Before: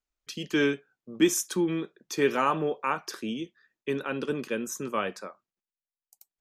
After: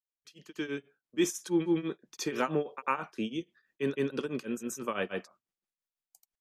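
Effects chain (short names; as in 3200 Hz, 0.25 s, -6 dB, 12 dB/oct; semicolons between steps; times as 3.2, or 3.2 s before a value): opening faded in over 1.63 s; grains 0.207 s, grains 6.1/s, spray 0.1 s, pitch spread up and down by 0 st; gain +1 dB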